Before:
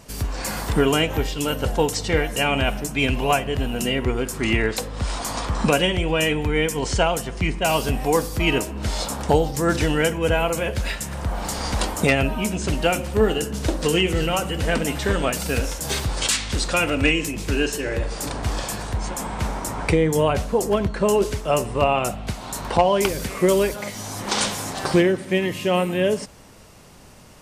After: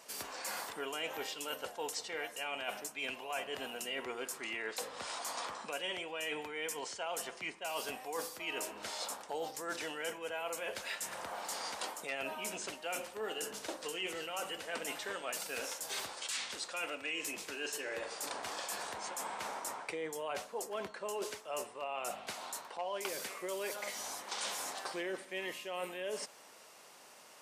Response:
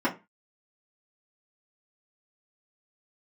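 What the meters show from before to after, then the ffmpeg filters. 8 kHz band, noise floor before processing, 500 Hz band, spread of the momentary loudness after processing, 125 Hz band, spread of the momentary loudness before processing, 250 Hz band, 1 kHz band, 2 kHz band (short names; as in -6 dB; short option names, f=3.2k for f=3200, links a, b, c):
-12.5 dB, -35 dBFS, -19.5 dB, 3 LU, -37.5 dB, 8 LU, -26.0 dB, -16.0 dB, -14.5 dB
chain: -af "highpass=560,areverse,acompressor=threshold=-31dB:ratio=6,areverse,volume=-6dB"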